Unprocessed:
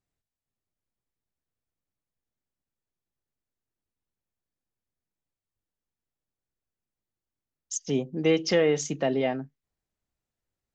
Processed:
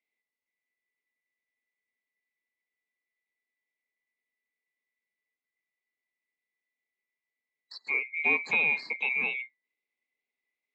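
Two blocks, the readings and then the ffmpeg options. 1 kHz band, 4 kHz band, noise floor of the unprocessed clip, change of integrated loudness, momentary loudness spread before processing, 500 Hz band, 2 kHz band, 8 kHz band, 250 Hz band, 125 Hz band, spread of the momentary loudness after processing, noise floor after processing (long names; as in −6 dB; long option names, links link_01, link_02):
−3.5 dB, −8.0 dB, below −85 dBFS, −0.5 dB, 12 LU, −18.0 dB, +10.5 dB, below −25 dB, −18.5 dB, below −20 dB, 13 LU, below −85 dBFS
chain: -filter_complex "[0:a]afftfilt=real='real(if(lt(b,920),b+92*(1-2*mod(floor(b/92),2)),b),0)':imag='imag(if(lt(b,920),b+92*(1-2*mod(floor(b/92),2)),b),0)':win_size=2048:overlap=0.75,highpass=frequency=200:width=0.5412,highpass=frequency=200:width=1.3066,equalizer=frequency=250:width_type=q:width=4:gain=6,equalizer=frequency=430:width_type=q:width=4:gain=7,equalizer=frequency=1400:width_type=q:width=4:gain=-10,equalizer=frequency=3100:width_type=q:width=4:gain=-4,lowpass=frequency=4200:width=0.5412,lowpass=frequency=4200:width=1.3066,acrossover=split=2800[link_01][link_02];[link_02]acompressor=threshold=-43dB:ratio=4:attack=1:release=60[link_03];[link_01][link_03]amix=inputs=2:normalize=0"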